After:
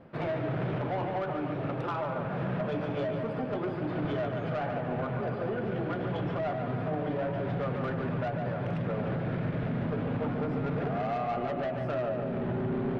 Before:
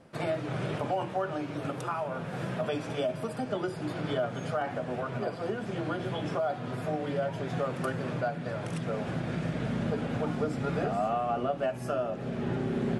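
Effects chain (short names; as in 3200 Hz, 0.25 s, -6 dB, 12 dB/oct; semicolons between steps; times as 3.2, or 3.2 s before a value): air absorption 370 m; soft clip -30.5 dBFS, distortion -12 dB; darkening echo 0.145 s, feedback 58%, low-pass 4000 Hz, level -5.5 dB; limiter -28.5 dBFS, peak gain reduction 3.5 dB; gain +4 dB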